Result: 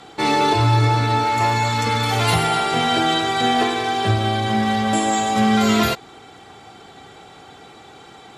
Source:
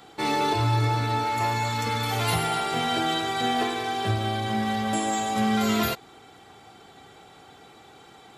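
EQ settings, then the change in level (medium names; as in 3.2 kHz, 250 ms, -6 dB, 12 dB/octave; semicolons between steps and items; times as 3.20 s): low-pass 9.7 kHz 12 dB/octave; +7.0 dB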